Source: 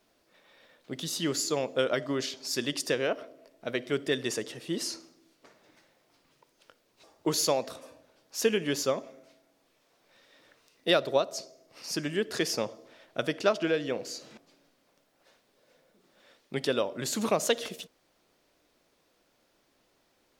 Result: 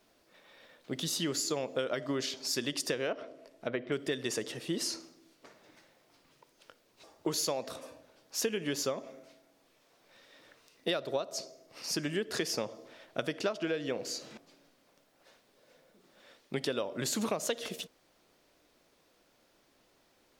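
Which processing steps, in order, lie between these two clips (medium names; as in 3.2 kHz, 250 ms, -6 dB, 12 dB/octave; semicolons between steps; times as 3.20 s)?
3.12–3.92 s: low-pass that closes with the level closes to 2 kHz, closed at -31 dBFS; compression 5:1, threshold -31 dBFS, peak gain reduction 11.5 dB; trim +1.5 dB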